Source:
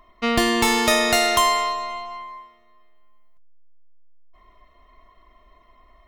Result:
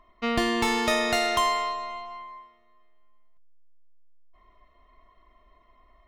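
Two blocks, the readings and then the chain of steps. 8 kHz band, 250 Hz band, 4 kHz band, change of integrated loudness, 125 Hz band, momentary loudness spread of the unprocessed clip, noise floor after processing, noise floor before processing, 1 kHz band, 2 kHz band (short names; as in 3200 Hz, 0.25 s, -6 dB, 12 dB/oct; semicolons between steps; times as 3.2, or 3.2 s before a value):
-10.5 dB, -5.0 dB, -7.0 dB, -6.0 dB, -5.0 dB, 17 LU, -62 dBFS, -56 dBFS, -5.0 dB, -6.0 dB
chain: high shelf 7000 Hz -10.5 dB; gain -5 dB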